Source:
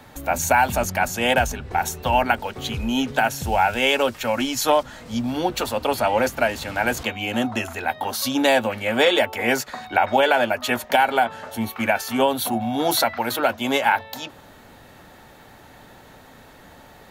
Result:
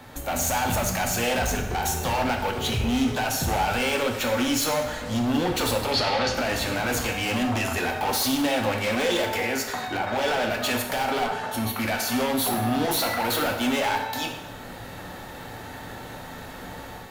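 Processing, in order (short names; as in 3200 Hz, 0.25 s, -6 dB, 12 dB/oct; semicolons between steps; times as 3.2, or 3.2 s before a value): AGC gain up to 6 dB; limiter -12.5 dBFS, peak gain reduction 10 dB; 9.36–10.07 compressor, threshold -24 dBFS, peak gain reduction 6.5 dB; hard clip -24 dBFS, distortion -8 dB; 5.92–6.35 synth low-pass 4500 Hz, resonance Q 2.8; plate-style reverb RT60 0.99 s, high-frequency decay 0.8×, DRR 2 dB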